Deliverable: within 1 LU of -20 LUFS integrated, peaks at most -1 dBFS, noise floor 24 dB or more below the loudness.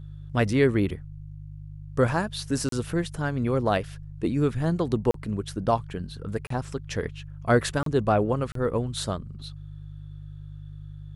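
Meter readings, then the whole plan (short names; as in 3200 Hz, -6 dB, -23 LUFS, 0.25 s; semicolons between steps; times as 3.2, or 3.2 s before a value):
dropouts 5; longest dropout 33 ms; hum 50 Hz; harmonics up to 150 Hz; hum level -38 dBFS; loudness -27.0 LUFS; peak -8.5 dBFS; loudness target -20.0 LUFS
-> interpolate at 2.69/5.11/6.47/7.83/8.52, 33 ms; de-hum 50 Hz, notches 3; gain +7 dB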